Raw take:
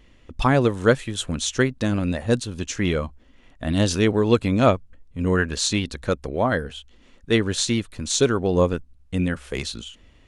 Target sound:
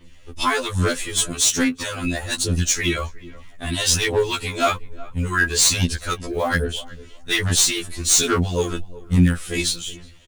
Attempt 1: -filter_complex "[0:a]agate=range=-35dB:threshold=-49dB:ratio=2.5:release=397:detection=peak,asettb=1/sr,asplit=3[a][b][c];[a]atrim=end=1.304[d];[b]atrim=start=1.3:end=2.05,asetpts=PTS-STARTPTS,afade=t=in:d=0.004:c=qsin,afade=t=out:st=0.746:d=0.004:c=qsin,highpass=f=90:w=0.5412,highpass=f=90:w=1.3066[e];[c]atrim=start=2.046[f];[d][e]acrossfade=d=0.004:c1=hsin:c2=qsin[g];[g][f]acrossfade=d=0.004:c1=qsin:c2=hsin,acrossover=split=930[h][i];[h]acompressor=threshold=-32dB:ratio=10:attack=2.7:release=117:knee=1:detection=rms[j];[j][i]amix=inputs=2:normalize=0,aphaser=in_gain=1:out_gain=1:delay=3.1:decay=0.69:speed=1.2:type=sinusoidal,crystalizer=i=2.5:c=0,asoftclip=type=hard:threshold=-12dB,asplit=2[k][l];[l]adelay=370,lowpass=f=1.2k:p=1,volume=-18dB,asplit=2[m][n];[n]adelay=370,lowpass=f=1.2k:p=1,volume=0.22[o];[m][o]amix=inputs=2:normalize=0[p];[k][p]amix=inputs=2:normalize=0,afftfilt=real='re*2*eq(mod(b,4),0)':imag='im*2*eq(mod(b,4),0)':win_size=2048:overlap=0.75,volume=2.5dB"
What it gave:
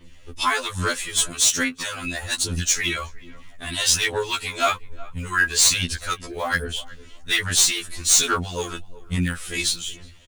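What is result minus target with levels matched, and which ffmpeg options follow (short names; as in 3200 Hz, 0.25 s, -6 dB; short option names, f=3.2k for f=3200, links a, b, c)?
compressor: peak gain reduction +9 dB
-filter_complex "[0:a]agate=range=-35dB:threshold=-49dB:ratio=2.5:release=397:detection=peak,asettb=1/sr,asplit=3[a][b][c];[a]atrim=end=1.304[d];[b]atrim=start=1.3:end=2.05,asetpts=PTS-STARTPTS,afade=t=in:d=0.004:c=qsin,afade=t=out:st=0.746:d=0.004:c=qsin,highpass=f=90:w=0.5412,highpass=f=90:w=1.3066[e];[c]atrim=start=2.046[f];[d][e]acrossfade=d=0.004:c1=hsin:c2=qsin[g];[g][f]acrossfade=d=0.004:c1=qsin:c2=hsin,acrossover=split=930[h][i];[h]acompressor=threshold=-22dB:ratio=10:attack=2.7:release=117:knee=1:detection=rms[j];[j][i]amix=inputs=2:normalize=0,aphaser=in_gain=1:out_gain=1:delay=3.1:decay=0.69:speed=1.2:type=sinusoidal,crystalizer=i=2.5:c=0,asoftclip=type=hard:threshold=-12dB,asplit=2[k][l];[l]adelay=370,lowpass=f=1.2k:p=1,volume=-18dB,asplit=2[m][n];[n]adelay=370,lowpass=f=1.2k:p=1,volume=0.22[o];[m][o]amix=inputs=2:normalize=0[p];[k][p]amix=inputs=2:normalize=0,afftfilt=real='re*2*eq(mod(b,4),0)':imag='im*2*eq(mod(b,4),0)':win_size=2048:overlap=0.75,volume=2.5dB"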